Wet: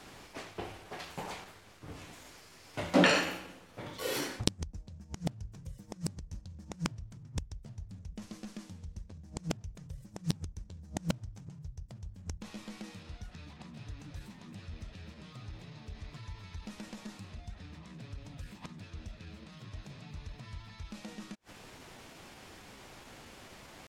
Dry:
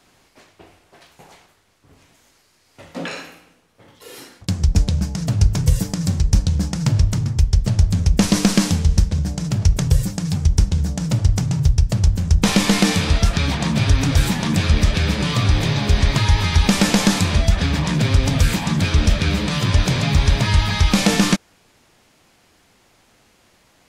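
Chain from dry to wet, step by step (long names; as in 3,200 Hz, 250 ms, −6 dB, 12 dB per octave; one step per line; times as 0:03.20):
high-shelf EQ 5,200 Hz −6 dB
gate with flip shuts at −14 dBFS, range −35 dB
pitch shifter +1 semitone
level +5.5 dB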